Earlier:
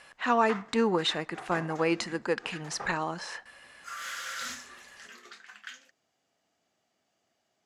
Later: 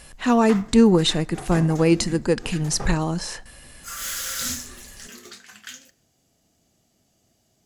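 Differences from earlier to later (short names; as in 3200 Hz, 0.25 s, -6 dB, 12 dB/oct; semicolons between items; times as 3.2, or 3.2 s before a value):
background: send on; master: remove band-pass 1400 Hz, Q 0.83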